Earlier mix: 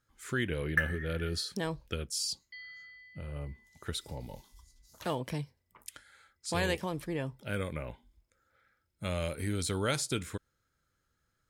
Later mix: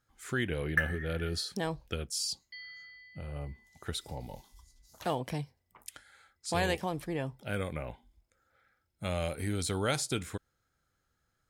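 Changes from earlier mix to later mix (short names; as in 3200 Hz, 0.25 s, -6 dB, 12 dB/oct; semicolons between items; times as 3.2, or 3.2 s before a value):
second sound: remove band-pass 2000 Hz, Q 0.77; master: add bell 750 Hz +8.5 dB 0.25 oct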